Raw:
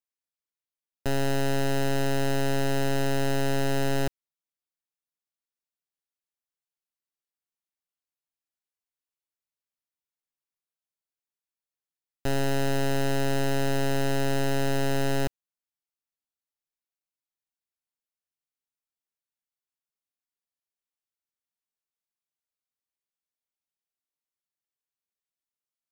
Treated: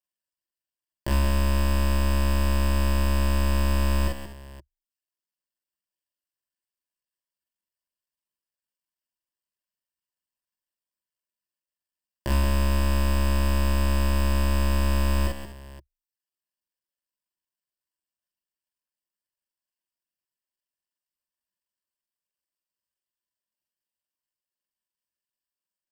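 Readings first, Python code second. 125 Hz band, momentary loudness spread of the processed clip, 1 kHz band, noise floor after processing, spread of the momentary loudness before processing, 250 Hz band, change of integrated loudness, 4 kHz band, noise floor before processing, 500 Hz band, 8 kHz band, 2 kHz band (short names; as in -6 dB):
+6.0 dB, 6 LU, +0.5 dB, under -85 dBFS, 4 LU, -0.5 dB, +3.0 dB, 0.0 dB, under -85 dBFS, -5.5 dB, -0.5 dB, -1.5 dB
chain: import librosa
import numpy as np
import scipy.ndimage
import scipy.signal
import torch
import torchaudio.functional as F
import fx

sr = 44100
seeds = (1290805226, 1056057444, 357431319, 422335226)

y = fx.cycle_switch(x, sr, every=2, mode='muted')
y = fx.ripple_eq(y, sr, per_octave=1.3, db=11)
y = fx.dereverb_blind(y, sr, rt60_s=0.74)
y = fx.echo_multitap(y, sr, ms=(43, 47, 169, 180, 249, 522), db=(-3.5, -4.0, -17.0, -8.5, -15.0, -16.0))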